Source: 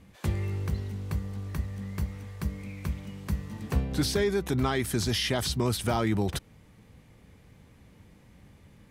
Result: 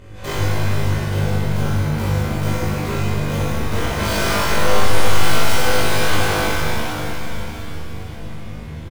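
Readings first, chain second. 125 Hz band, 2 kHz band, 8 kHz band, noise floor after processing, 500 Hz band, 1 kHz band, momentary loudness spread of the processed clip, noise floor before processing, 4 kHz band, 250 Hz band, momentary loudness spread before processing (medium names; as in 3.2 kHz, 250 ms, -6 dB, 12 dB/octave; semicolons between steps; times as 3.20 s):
+10.5 dB, +16.0 dB, +11.0 dB, -31 dBFS, +9.5 dB, +15.0 dB, 14 LU, -57 dBFS, +10.0 dB, +7.0 dB, 9 LU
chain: integer overflow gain 24.5 dB; upward compressor, threshold -41 dBFS; treble shelf 4.3 kHz -9.5 dB; comb 2 ms, depth 32%; on a send: flutter echo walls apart 3.4 m, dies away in 0.64 s; on the sum: compression, threshold -26 dBFS, peak gain reduction 8 dB; pitch-shifted reverb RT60 3.6 s, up +7 st, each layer -8 dB, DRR -10 dB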